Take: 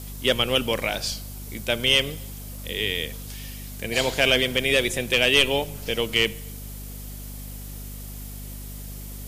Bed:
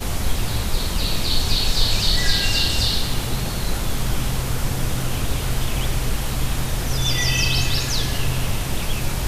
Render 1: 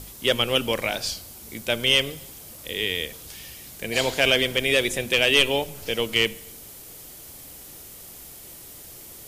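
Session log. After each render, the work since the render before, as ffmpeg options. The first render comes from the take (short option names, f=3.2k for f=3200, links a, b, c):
-af "bandreject=f=50:t=h:w=6,bandreject=f=100:t=h:w=6,bandreject=f=150:t=h:w=6,bandreject=f=200:t=h:w=6,bandreject=f=250:t=h:w=6"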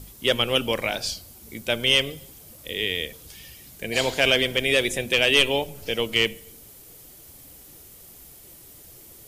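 -af "afftdn=nr=6:nf=-43"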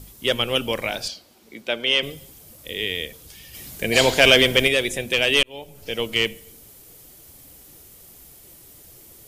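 -filter_complex "[0:a]asettb=1/sr,asplit=3[a][b][c];[a]atrim=end=1.084[d];[b]atrim=start=1.08:end=2.03,asetpts=PTS-STARTPTS,afade=t=in:d=0.004:c=qsin,afade=t=out:st=0.946:d=0.004:c=qsin,acrossover=split=200 5200:gain=0.112 1 0.2[e][f][g];[e][f][g]amix=inputs=3:normalize=0[h];[c]atrim=start=2.026[i];[d][h]acrossfade=d=0.004:c1=hsin:c2=qsin[j];[j][i]acrossfade=d=0.004:c1=qsin:c2=hsin,asplit=3[k][l][m];[k]afade=t=out:st=3.53:d=0.02[n];[l]acontrast=90,afade=t=in:st=3.53:d=0.02,afade=t=out:st=4.67:d=0.02[o];[m]afade=t=in:st=4.67:d=0.02[p];[n][o][p]amix=inputs=3:normalize=0,asplit=2[q][r];[q]atrim=end=5.43,asetpts=PTS-STARTPTS,afade=t=out:st=5.426:d=0.004:c=hsin[s];[r]atrim=start=5.43,asetpts=PTS-STARTPTS,afade=t=in:d=0.59[t];[s][t]concat=n=2:v=0:a=1"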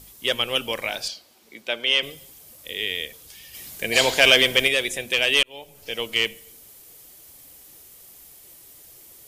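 -af "lowshelf=f=430:g=-9.5,bandreject=f=1.4k:w=28"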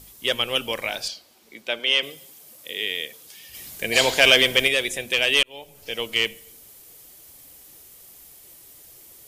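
-filter_complex "[0:a]asettb=1/sr,asplit=3[a][b][c];[a]atrim=end=1.794[d];[b]atrim=start=1.79:end=3.49,asetpts=PTS-STARTPTS,afade=t=in:d=0.004:c=qsin,afade=t=out:st=1.696:d=0.004:c=qsin,highpass=170[e];[c]atrim=start=3.486[f];[d][e]acrossfade=d=0.004:c1=hsin:c2=qsin[g];[g][f]acrossfade=d=0.004:c1=qsin:c2=hsin"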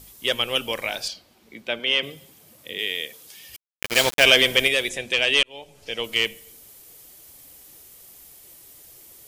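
-filter_complex "[0:a]asettb=1/sr,asplit=3[a][b][c];[a]atrim=end=1.134[d];[b]atrim=start=1.13:end=2.79,asetpts=PTS-STARTPTS,afade=t=in:d=0.004:c=qsin,afade=t=out:st=1.656:d=0.004:c=qsin,bass=f=250:g=9,treble=f=4k:g=-6[e];[c]atrim=start=2.786[f];[d][e]acrossfade=d=0.004:c1=hsin:c2=qsin[g];[g][f]acrossfade=d=0.004:c1=qsin:c2=hsin,asettb=1/sr,asplit=3[h][i][j];[h]atrim=end=3.564[k];[i]atrim=start=3.56:end=4.24,asetpts=PTS-STARTPTS,afade=t=in:d=0.004:c=qsin,afade=t=out:st=0.676:d=0.004:c=qsin,aeval=exprs='val(0)*gte(abs(val(0)),0.112)':c=same[l];[j]atrim=start=4.236[m];[k][l]acrossfade=d=0.004:c1=hsin:c2=qsin[n];[n][m]acrossfade=d=0.004:c1=qsin:c2=hsin,asettb=1/sr,asplit=3[o][p][q];[o]atrim=end=4.894[r];[p]atrim=start=4.89:end=6.04,asetpts=PTS-STARTPTS,afade=t=in:d=0.004:c=qsin,afade=t=out:st=1.146:d=0.004:c=qsin,lowpass=7.8k[s];[q]atrim=start=6.036[t];[r][s]acrossfade=d=0.004:c1=hsin:c2=qsin[u];[u][t]acrossfade=d=0.004:c1=qsin:c2=hsin"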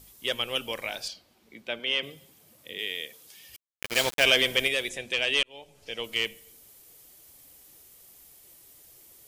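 -af "volume=-6dB"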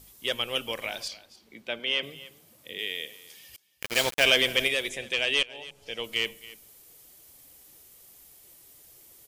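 -af "aecho=1:1:278:0.119"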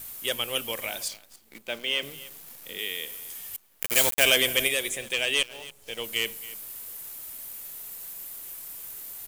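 -af "aexciter=amount=4.4:drive=4.3:freq=7k,acrusher=bits=8:dc=4:mix=0:aa=0.000001"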